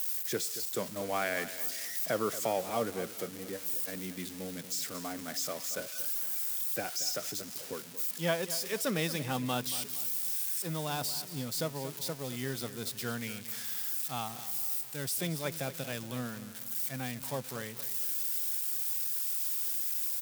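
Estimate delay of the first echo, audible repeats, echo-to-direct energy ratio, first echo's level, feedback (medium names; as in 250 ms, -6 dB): 230 ms, 3, -13.0 dB, -14.0 dB, 41%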